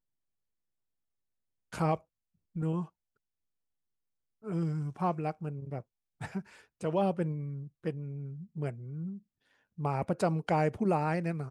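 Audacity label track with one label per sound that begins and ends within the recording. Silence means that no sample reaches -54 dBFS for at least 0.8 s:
1.720000	2.890000	sound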